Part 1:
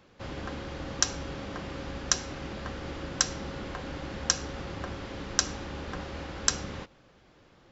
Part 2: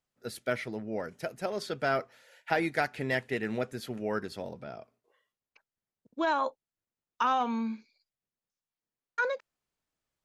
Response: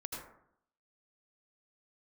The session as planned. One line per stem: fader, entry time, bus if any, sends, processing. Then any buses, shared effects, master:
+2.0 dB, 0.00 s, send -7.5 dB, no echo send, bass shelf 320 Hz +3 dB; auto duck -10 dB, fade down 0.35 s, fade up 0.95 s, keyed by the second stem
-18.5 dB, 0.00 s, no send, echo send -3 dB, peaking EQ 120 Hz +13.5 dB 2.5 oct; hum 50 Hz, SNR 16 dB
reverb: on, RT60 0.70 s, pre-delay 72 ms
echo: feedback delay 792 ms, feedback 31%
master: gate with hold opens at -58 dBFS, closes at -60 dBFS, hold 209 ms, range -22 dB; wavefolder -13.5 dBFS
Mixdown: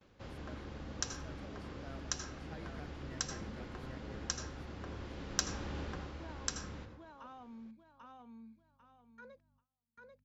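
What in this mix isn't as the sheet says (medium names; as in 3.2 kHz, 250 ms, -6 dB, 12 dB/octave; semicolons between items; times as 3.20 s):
stem 1 +2.0 dB -> -7.5 dB; stem 2 -18.5 dB -> -27.0 dB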